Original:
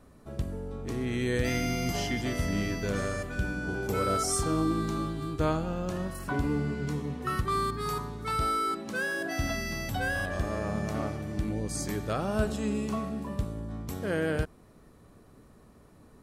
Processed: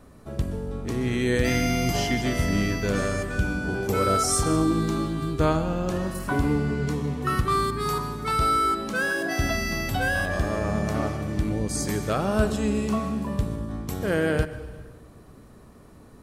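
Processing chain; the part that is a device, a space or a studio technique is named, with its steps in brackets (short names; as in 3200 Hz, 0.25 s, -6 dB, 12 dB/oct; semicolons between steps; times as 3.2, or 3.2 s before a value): compressed reverb return (on a send at -8 dB: reverb RT60 1.0 s, pre-delay 0.12 s + compressor, threshold -30 dBFS, peak gain reduction 9 dB); on the sum: gain +5.5 dB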